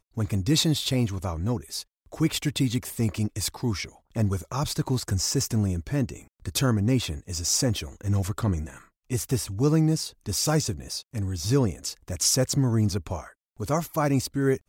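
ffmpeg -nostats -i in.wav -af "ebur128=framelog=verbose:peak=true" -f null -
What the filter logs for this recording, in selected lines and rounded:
Integrated loudness:
  I:         -26.4 LUFS
  Threshold: -36.6 LUFS
Loudness range:
  LRA:         2.5 LU
  Threshold: -46.7 LUFS
  LRA low:   -28.0 LUFS
  LRA high:  -25.5 LUFS
True peak:
  Peak:      -10.6 dBFS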